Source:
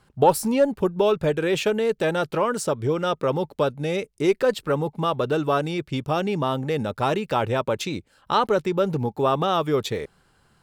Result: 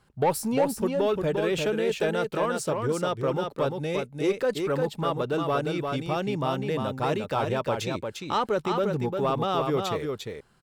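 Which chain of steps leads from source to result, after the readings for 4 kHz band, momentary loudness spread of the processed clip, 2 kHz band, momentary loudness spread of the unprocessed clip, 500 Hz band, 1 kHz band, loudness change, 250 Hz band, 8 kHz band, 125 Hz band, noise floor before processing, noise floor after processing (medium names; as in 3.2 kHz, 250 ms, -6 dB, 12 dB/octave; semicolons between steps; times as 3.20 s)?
-3.5 dB, 4 LU, -3.5 dB, 6 LU, -3.5 dB, -4.0 dB, -3.5 dB, -3.5 dB, -3.0 dB, -3.0 dB, -63 dBFS, -52 dBFS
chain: saturation -11.5 dBFS, distortion -20 dB; delay 350 ms -4.5 dB; trim -4 dB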